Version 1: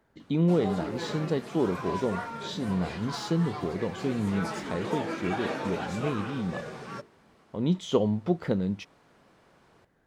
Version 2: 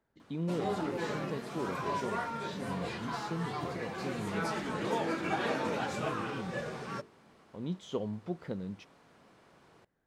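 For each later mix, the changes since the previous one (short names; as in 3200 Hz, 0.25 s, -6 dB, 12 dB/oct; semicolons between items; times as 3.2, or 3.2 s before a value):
speech -11.0 dB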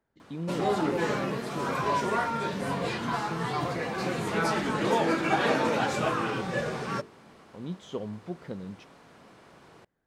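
background +7.5 dB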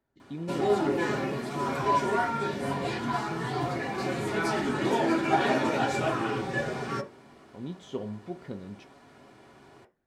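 reverb: on, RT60 0.30 s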